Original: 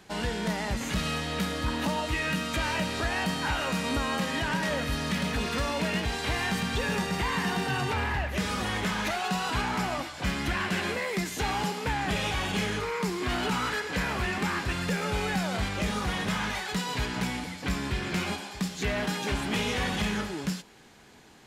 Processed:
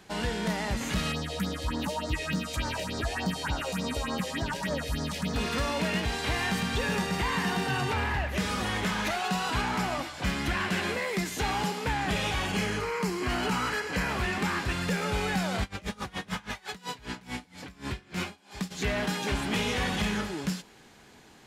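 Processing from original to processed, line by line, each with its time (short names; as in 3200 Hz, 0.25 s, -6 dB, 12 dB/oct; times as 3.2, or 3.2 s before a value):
1.12–5.36 phaser stages 4, 3.4 Hz, lowest notch 190–2700 Hz
12.46–14.1 notch 3600 Hz, Q 6.5
15.62–18.7 dB-linear tremolo 8 Hz -> 2.4 Hz, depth 26 dB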